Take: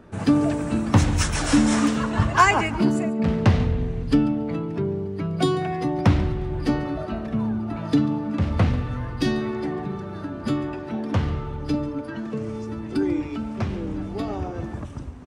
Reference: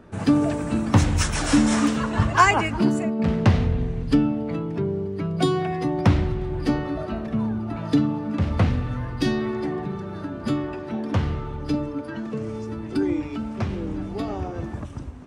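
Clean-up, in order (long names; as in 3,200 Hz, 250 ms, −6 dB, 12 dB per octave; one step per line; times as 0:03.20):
clipped peaks rebuilt −5.5 dBFS
echo removal 142 ms −17.5 dB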